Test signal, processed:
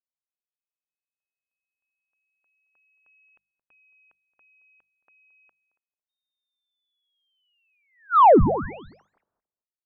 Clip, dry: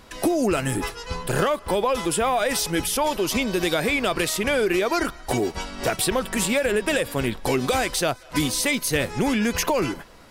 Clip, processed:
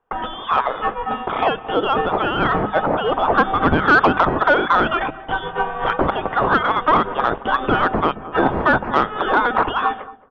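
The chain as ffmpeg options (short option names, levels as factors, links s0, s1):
-filter_complex "[0:a]aderivative,aexciter=amount=14.2:drive=6.3:freq=2500,agate=range=0.0251:threshold=0.0447:ratio=16:detection=peak,asplit=2[s0][s1];[s1]acompressor=threshold=0.355:ratio=6,volume=0.891[s2];[s0][s2]amix=inputs=2:normalize=0,lowpass=f=3200:t=q:w=0.5098,lowpass=f=3200:t=q:w=0.6013,lowpass=f=3200:t=q:w=0.9,lowpass=f=3200:t=q:w=2.563,afreqshift=-3800,asplit=2[s3][s4];[s4]adelay=222,lowpass=f=820:p=1,volume=0.178,asplit=2[s5][s6];[s6]adelay=222,lowpass=f=820:p=1,volume=0.21[s7];[s5][s7]amix=inputs=2:normalize=0[s8];[s3][s8]amix=inputs=2:normalize=0,acontrast=72,bandreject=f=50:t=h:w=6,bandreject=f=100:t=h:w=6,bandreject=f=150:t=h:w=6,bandreject=f=200:t=h:w=6,volume=0.794"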